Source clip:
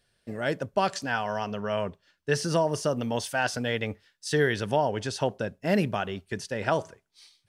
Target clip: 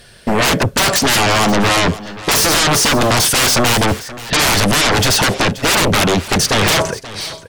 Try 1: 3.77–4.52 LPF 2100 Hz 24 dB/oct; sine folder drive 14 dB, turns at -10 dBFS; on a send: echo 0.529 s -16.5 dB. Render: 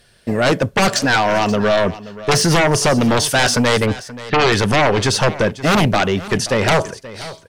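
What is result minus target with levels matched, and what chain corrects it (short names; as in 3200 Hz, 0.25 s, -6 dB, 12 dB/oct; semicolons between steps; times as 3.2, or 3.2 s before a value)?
sine folder: distortion -15 dB
3.77–4.52 LPF 2100 Hz 24 dB/oct; sine folder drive 24 dB, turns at -10 dBFS; on a send: echo 0.529 s -16.5 dB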